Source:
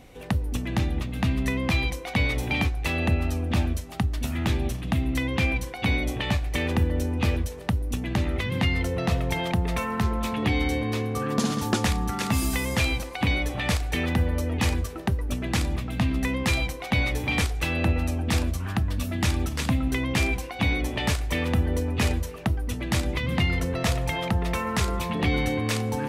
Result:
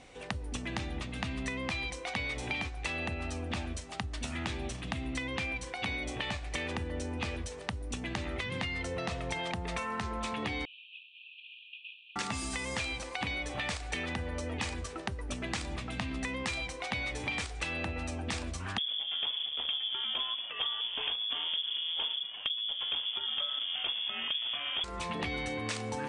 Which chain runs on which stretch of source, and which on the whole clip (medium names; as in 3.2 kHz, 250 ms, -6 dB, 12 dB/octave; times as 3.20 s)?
10.65–12.16 s: CVSD coder 16 kbps + brick-wall FIR high-pass 2.4 kHz + distance through air 180 m
18.78–24.84 s: comb filter that takes the minimum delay 0.32 ms + frequency inversion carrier 3.4 kHz
whole clip: bass shelf 390 Hz -10 dB; compression, threshold -32 dBFS; steep low-pass 9.5 kHz 72 dB/octave